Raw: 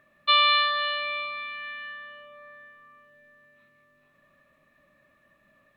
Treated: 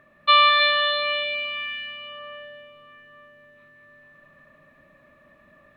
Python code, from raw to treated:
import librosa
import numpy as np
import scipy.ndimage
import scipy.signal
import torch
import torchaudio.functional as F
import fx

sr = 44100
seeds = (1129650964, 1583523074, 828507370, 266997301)

p1 = fx.high_shelf(x, sr, hz=3000.0, db=-10.0)
p2 = p1 + fx.echo_heads(p1, sr, ms=106, heads='second and third', feedback_pct=51, wet_db=-6, dry=0)
y = F.gain(torch.from_numpy(p2), 7.5).numpy()